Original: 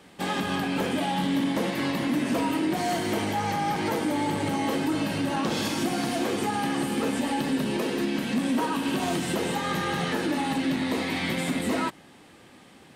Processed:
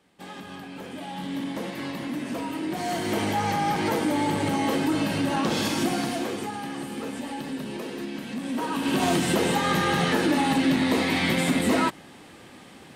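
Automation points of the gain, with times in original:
0.8 s -12 dB
1.39 s -5.5 dB
2.52 s -5.5 dB
3.26 s +2 dB
5.89 s +2 dB
6.6 s -6.5 dB
8.4 s -6.5 dB
9.03 s +4.5 dB

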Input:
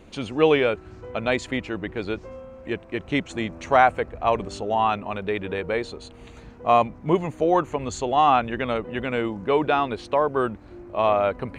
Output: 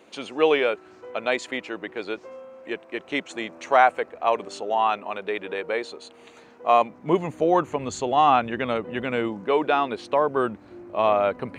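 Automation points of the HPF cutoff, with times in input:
6.72 s 360 Hz
7.37 s 120 Hz
9.27 s 120 Hz
9.52 s 290 Hz
10.3 s 140 Hz

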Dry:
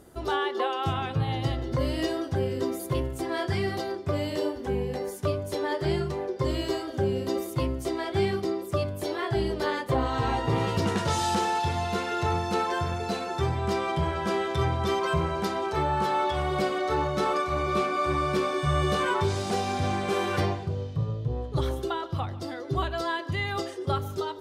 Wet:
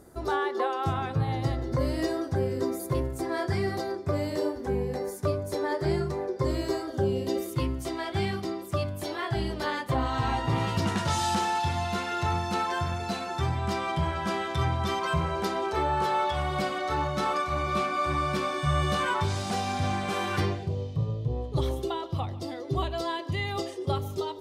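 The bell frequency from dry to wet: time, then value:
bell -10.5 dB 0.47 oct
6.88 s 3000 Hz
7.8 s 440 Hz
15.2 s 440 Hz
15.53 s 100 Hz
16.44 s 420 Hz
20.29 s 420 Hz
20.72 s 1500 Hz

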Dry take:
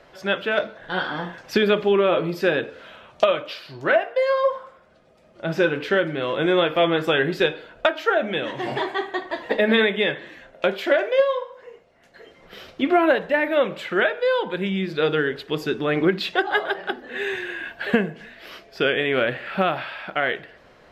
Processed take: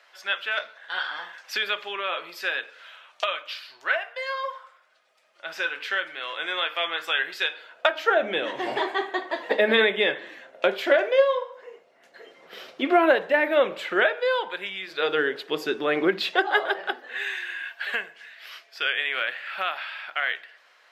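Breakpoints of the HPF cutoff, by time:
7.48 s 1300 Hz
8.22 s 340 Hz
13.91 s 340 Hz
14.81 s 1100 Hz
15.22 s 360 Hz
16.77 s 360 Hz
17.3 s 1300 Hz

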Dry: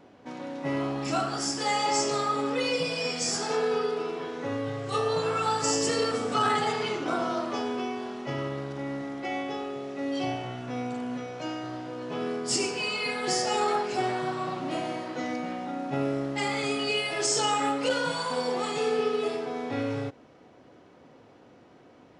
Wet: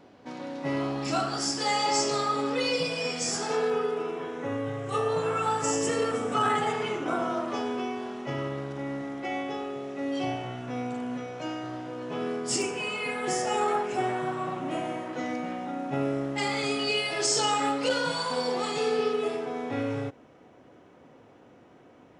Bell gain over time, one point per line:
bell 4500 Hz 0.51 oct
+3 dB
from 2.87 s -3.5 dB
from 3.7 s -13 dB
from 7.48 s -5 dB
from 12.62 s -14 dB
from 15.13 s -6.5 dB
from 16.38 s +3 dB
from 19.13 s -7 dB

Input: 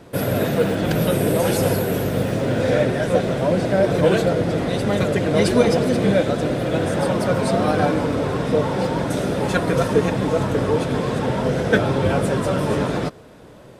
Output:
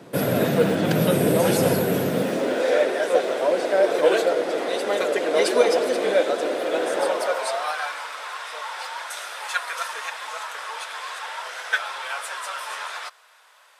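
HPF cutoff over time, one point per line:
HPF 24 dB/oct
2.02 s 130 Hz
2.67 s 370 Hz
7 s 370 Hz
7.83 s 1000 Hz

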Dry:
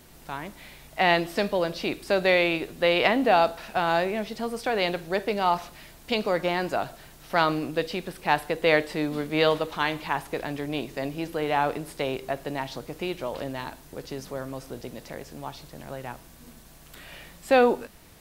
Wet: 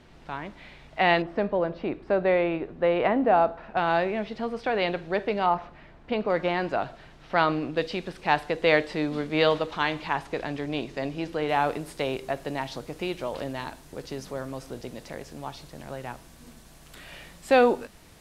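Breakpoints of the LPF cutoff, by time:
3500 Hz
from 1.22 s 1400 Hz
from 3.77 s 3200 Hz
from 5.46 s 1800 Hz
from 6.3 s 3400 Hz
from 7.77 s 5900 Hz
from 11.49 s 11000 Hz

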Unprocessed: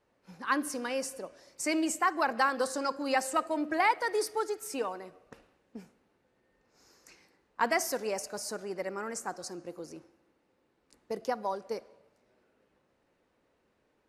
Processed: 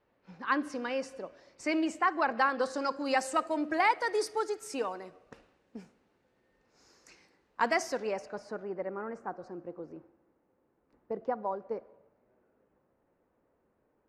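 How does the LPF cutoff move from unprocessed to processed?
2.56 s 3700 Hz
3.17 s 8000 Hz
7.62 s 8000 Hz
8.12 s 3100 Hz
8.8 s 1300 Hz

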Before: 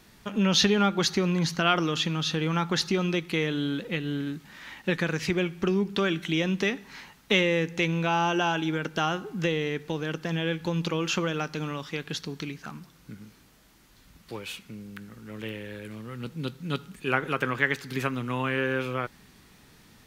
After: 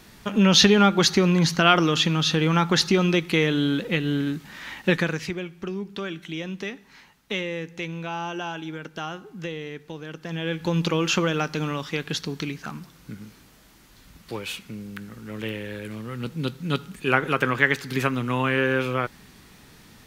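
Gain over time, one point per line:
4.94 s +6 dB
5.41 s -6 dB
10.11 s -6 dB
10.74 s +5 dB

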